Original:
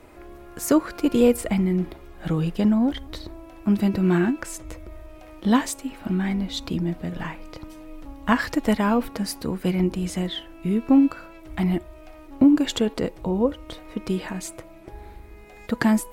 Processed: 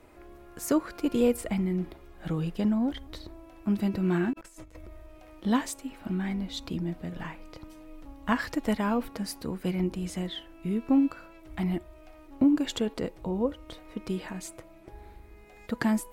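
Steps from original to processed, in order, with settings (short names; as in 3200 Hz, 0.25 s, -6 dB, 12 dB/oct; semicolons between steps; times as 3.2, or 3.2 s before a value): 4.33–4.86 negative-ratio compressor -41 dBFS, ratio -0.5; gain -6.5 dB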